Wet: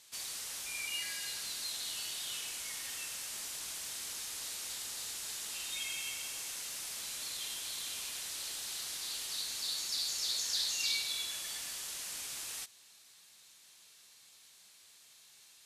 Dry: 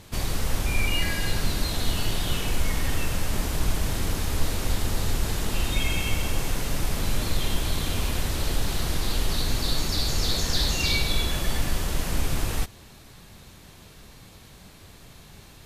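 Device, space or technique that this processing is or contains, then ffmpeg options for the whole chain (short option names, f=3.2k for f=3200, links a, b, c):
piezo pickup straight into a mixer: -af "lowpass=8.9k,aderivative,volume=-1.5dB"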